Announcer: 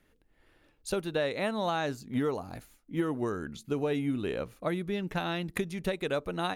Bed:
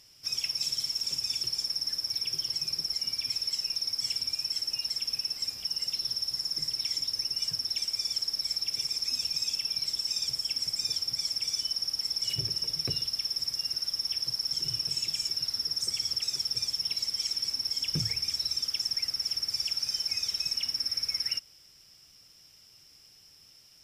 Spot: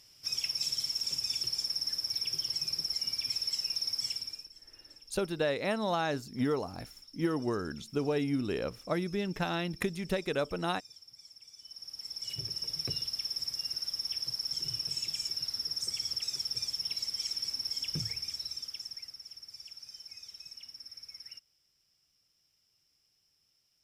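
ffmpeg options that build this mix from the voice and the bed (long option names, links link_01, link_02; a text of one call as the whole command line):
ffmpeg -i stem1.wav -i stem2.wav -filter_complex "[0:a]adelay=4250,volume=-0.5dB[link_01];[1:a]volume=16.5dB,afade=type=out:start_time=3.98:duration=0.52:silence=0.0944061,afade=type=in:start_time=11.57:duration=1.24:silence=0.11885,afade=type=out:start_time=17.74:duration=1.49:silence=0.223872[link_02];[link_01][link_02]amix=inputs=2:normalize=0" out.wav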